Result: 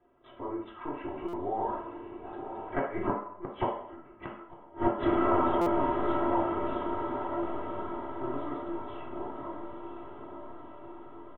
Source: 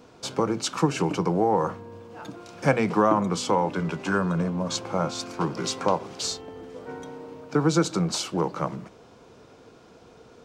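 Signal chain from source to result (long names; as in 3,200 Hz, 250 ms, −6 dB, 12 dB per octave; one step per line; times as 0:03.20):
source passing by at 0:03.62, 16 m/s, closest 2.2 metres
linear-prediction vocoder at 8 kHz pitch kept
mains-hum notches 60/120/180/240/300/360/420 Hz
comb filter 2.8 ms, depth 74%
feedback delay with all-pass diffusion 901 ms, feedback 61%, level −8.5 dB
gate with flip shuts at −24 dBFS, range −33 dB
low-shelf EQ 99 Hz +8.5 dB
notch filter 2,600 Hz, Q 13
convolution reverb RT60 0.65 s, pre-delay 3 ms, DRR −3 dB
wrong playback speed 48 kHz file played as 44.1 kHz
buffer that repeats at 0:01.28/0:05.61, samples 256, times 8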